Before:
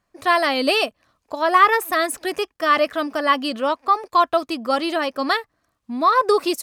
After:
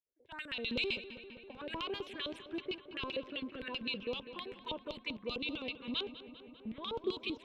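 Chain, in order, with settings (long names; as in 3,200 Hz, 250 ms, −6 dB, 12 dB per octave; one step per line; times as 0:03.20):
running median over 3 samples
low-pass that shuts in the quiet parts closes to 790 Hz, open at −14.5 dBFS
notch filter 5,200 Hz, Q 5.9
auto-filter band-pass square 8.7 Hz 530–3,000 Hz
in parallel at +2 dB: brickwall limiter −28 dBFS, peak gain reduction 16.5 dB
on the sum: automatic gain control gain up to 7 dB
speed change −11%
guitar amp tone stack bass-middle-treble 6-0-2
phaser swept by the level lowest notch 190 Hz, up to 1,800 Hz, full sweep at −39 dBFS
on a send: feedback echo with a low-pass in the loop 198 ms, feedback 79%, low-pass 3,400 Hz, level −13 dB
on the sum: level +4.5 dB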